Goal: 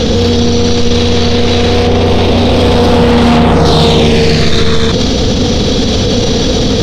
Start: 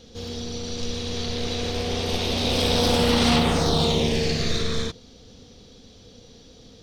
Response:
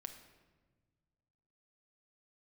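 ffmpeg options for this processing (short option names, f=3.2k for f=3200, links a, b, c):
-af "aeval=exprs='0.398*sin(PI/2*2.24*val(0)/0.398)':c=same,asetnsamples=n=441:p=0,asendcmd='1.87 lowpass f 1200;3.65 lowpass f 3600',lowpass=f=2.6k:p=1,alimiter=level_in=35dB:limit=-1dB:release=50:level=0:latency=1,volume=-1dB"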